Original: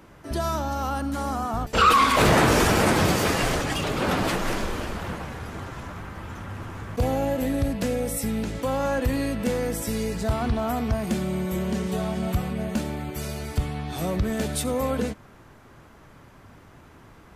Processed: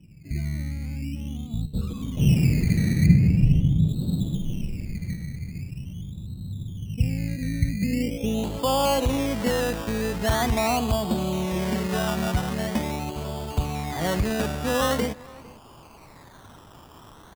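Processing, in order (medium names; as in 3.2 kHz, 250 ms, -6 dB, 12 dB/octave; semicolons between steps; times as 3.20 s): low-pass sweep 160 Hz -> 990 Hz, 7.79–8.51 s; decimation with a swept rate 16×, swing 60% 0.43 Hz; 3.06–3.88 s: tone controls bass +8 dB, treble -8 dB; echo from a far wall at 78 m, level -22 dB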